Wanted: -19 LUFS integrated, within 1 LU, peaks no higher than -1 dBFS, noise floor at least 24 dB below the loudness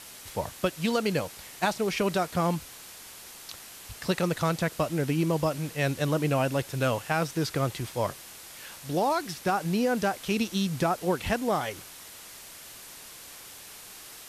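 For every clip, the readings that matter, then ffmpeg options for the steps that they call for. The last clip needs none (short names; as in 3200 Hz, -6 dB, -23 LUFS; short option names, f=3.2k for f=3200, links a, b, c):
noise floor -46 dBFS; noise floor target -53 dBFS; loudness -28.5 LUFS; peak -12.0 dBFS; loudness target -19.0 LUFS
-> -af "afftdn=nr=7:nf=-46"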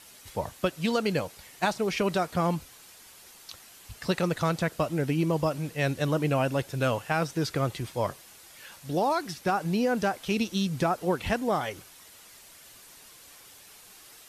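noise floor -52 dBFS; noise floor target -53 dBFS
-> -af "afftdn=nr=6:nf=-52"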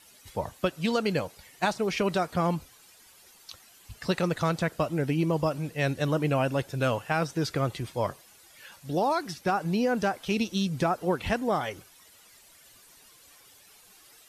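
noise floor -56 dBFS; loudness -28.5 LUFS; peak -12.0 dBFS; loudness target -19.0 LUFS
-> -af "volume=9.5dB"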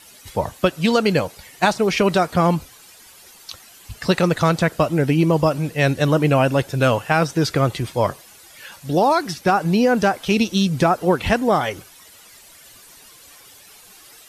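loudness -19.0 LUFS; peak -2.5 dBFS; noise floor -47 dBFS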